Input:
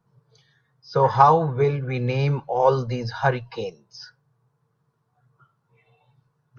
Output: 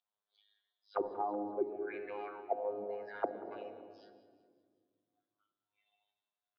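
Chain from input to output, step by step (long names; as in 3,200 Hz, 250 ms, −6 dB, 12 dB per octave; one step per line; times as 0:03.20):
three-way crossover with the lows and the highs turned down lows −21 dB, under 170 Hz, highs −22 dB, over 3,400 Hz
phases set to zero 103 Hz
parametric band 690 Hz +14.5 dB 0.42 octaves
envelope filter 270–3,600 Hz, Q 7, down, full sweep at −15.5 dBFS
rectangular room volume 2,500 cubic metres, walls mixed, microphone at 0.79 metres
downward compressor 3 to 1, threshold −37 dBFS, peak gain reduction 12.5 dB
repeating echo 189 ms, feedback 49%, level −17 dB
level +3 dB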